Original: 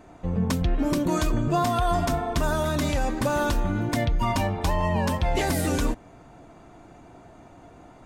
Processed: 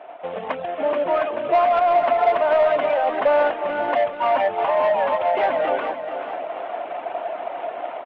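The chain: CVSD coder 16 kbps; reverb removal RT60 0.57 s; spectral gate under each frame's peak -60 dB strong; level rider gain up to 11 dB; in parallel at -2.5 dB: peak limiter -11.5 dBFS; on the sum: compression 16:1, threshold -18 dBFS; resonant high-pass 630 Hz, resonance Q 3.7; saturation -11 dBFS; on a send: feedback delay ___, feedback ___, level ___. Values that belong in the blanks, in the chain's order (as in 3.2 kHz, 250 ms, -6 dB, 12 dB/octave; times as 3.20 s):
436 ms, 39%, -9 dB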